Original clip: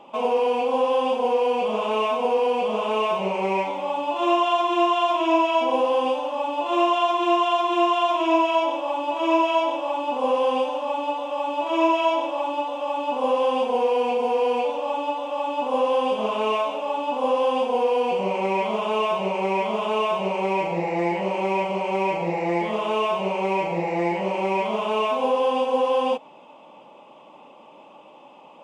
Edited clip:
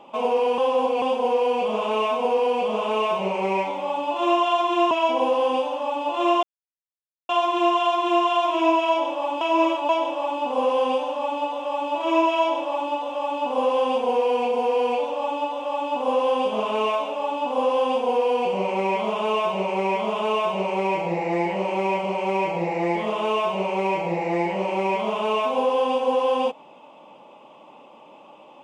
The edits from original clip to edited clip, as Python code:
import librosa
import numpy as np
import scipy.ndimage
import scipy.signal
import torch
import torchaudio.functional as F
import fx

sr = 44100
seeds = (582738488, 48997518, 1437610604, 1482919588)

y = fx.edit(x, sr, fx.reverse_span(start_s=0.58, length_s=0.44),
    fx.cut(start_s=4.91, length_s=0.52),
    fx.insert_silence(at_s=6.95, length_s=0.86),
    fx.reverse_span(start_s=9.07, length_s=0.48), tone=tone)